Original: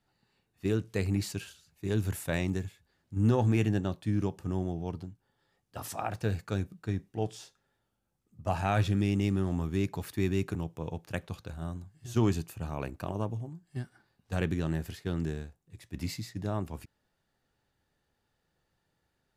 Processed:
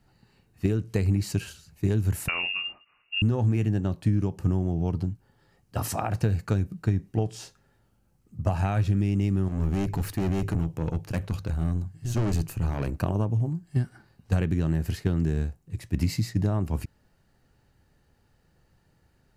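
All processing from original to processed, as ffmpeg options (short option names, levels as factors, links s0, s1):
-filter_complex "[0:a]asettb=1/sr,asplit=3[s0][s1][s2];[s0]atrim=end=2.284[s3];[s1]atrim=start=2.28:end=3.22,asetpts=PTS-STARTPTS,afade=t=in:d=0.004:c=qsin,afade=t=out:st=0.936:d=0.004:c=qsin,asplit=2[s4][s5];[s5]adelay=34,volume=0.355[s6];[s4][s6]amix=inputs=2:normalize=0,atrim=end_sample=41454,lowpass=f=2500:t=q:w=0.5098,lowpass=f=2500:t=q:w=0.6013,lowpass=f=2500:t=q:w=0.9,lowpass=f=2500:t=q:w=2.563,afreqshift=-2900[s7];[s2]atrim=start=3.216[s8];[s3][s7]acrossfade=d=0.004:c1=hsin:c2=qsin[s9];[s9][s8]acrossfade=d=0.004:c1=qsin:c2=hsin,asettb=1/sr,asplit=3[s10][s11][s12];[s10]atrim=end=9.484[s13];[s11]atrim=start=9.48:end=12.97,asetpts=PTS-STARTPTS,afade=t=in:d=0.004:c=qsin,afade=t=out:st=3.486:d=0.004:c=qsin,aeval=exprs='(tanh(50.1*val(0)+0.4)-tanh(0.4))/50.1':c=same,bandreject=f=50:t=h:w=6,bandreject=f=100:t=h:w=6,bandreject=f=150:t=h:w=6[s14];[s12]atrim=start=12.966[s15];[s13][s14]acrossfade=d=0.004:c1=hsin:c2=qsin[s16];[s16][s15]acrossfade=d=0.004:c1=qsin:c2=hsin,acompressor=threshold=0.02:ratio=10,lowshelf=f=240:g=9.5,bandreject=f=3500:w=9,volume=2.51"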